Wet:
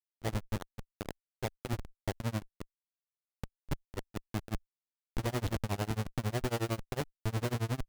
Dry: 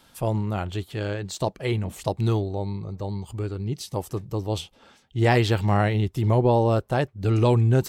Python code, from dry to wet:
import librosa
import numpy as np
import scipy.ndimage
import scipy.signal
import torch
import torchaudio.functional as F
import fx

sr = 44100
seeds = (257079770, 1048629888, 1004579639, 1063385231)

y = fx.schmitt(x, sr, flips_db=-21.5)
y = y * (1.0 - 0.97 / 2.0 + 0.97 / 2.0 * np.cos(2.0 * np.pi * 11.0 * (np.arange(len(y)) / sr)))
y = y * 10.0 ** (-5.0 / 20.0)